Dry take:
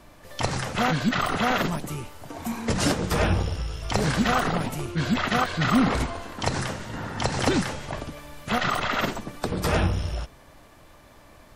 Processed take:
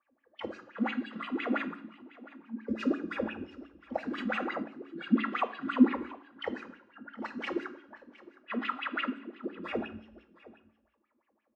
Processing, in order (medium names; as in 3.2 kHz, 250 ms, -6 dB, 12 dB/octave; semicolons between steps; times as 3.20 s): median filter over 5 samples; spectral noise reduction 14 dB; level-controlled noise filter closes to 2.4 kHz, open at -22 dBFS; comb 3.6 ms, depth 93%; wah-wah 5.8 Hz 240–2800 Hz, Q 8.3; delay 713 ms -19.5 dB; on a send at -10.5 dB: reverberation RT60 0.70 s, pre-delay 3 ms; 4.18–4.63 s: on the sum: level flattener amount 50%